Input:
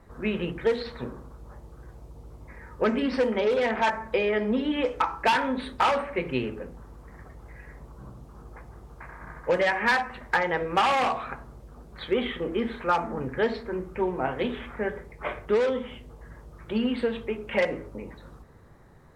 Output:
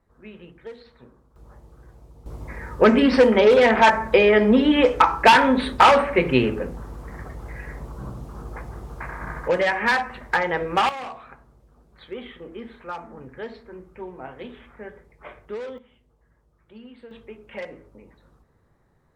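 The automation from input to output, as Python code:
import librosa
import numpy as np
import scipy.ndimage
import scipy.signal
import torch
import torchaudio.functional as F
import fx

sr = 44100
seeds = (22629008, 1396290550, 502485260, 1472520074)

y = fx.gain(x, sr, db=fx.steps((0.0, -14.5), (1.36, -2.5), (2.26, 9.5), (9.48, 2.5), (10.89, -9.5), (15.78, -18.0), (17.11, -10.0)))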